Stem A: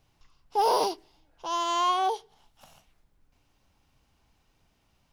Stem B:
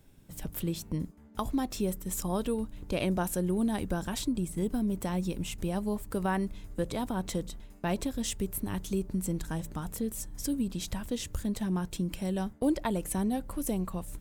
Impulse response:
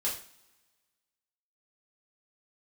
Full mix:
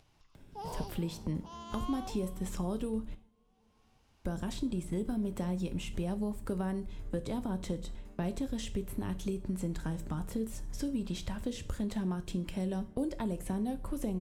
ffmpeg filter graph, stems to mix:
-filter_complex "[0:a]lowpass=12k,volume=-19.5dB,asplit=2[a][b];[b]volume=-15dB[c];[1:a]aemphasis=mode=reproduction:type=50kf,acrossover=split=450|5200[d][e][f];[d]acompressor=threshold=-35dB:ratio=4[g];[e]acompressor=threshold=-46dB:ratio=4[h];[f]acompressor=threshold=-52dB:ratio=4[i];[g][h][i]amix=inputs=3:normalize=0,adelay=350,volume=0.5dB,asplit=3[j][k][l];[j]atrim=end=3.15,asetpts=PTS-STARTPTS,afade=t=out:st=3.146:d=0.004:c=hsin[m];[k]atrim=start=3.15:end=4.25,asetpts=PTS-STARTPTS,volume=0[n];[l]atrim=start=4.25,asetpts=PTS-STARTPTS,afade=t=in:d=0.004:c=hsin[o];[m][n][o]concat=n=3:v=0:a=1,asplit=2[p][q];[q]volume=-12dB[r];[2:a]atrim=start_sample=2205[s];[r][s]afir=irnorm=-1:irlink=0[t];[c]aecho=0:1:378|756|1134|1512|1890:1|0.35|0.122|0.0429|0.015[u];[a][p][t][u]amix=inputs=4:normalize=0,acompressor=mode=upward:threshold=-50dB:ratio=2.5"

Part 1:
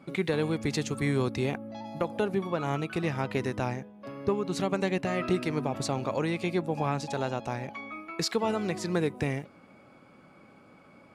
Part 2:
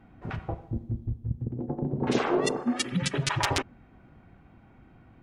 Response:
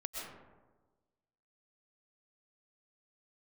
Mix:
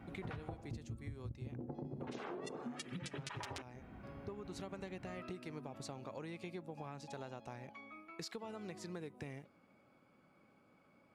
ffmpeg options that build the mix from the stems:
-filter_complex "[0:a]volume=-13.5dB[a];[1:a]highpass=44,acompressor=threshold=-28dB:ratio=6,volume=1.5dB[b];[a][b]amix=inputs=2:normalize=0,acompressor=threshold=-42dB:ratio=10"

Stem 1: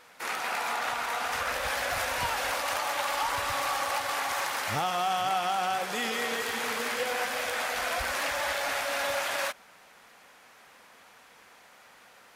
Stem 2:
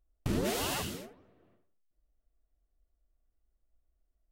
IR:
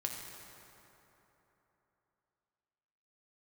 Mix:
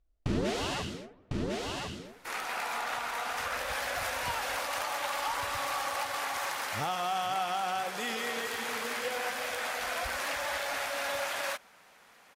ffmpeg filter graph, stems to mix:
-filter_complex "[0:a]adelay=2050,volume=-3.5dB[a];[1:a]lowpass=5.8k,volume=1dB,asplit=2[b][c];[c]volume=-3dB,aecho=0:1:1052:1[d];[a][b][d]amix=inputs=3:normalize=0"

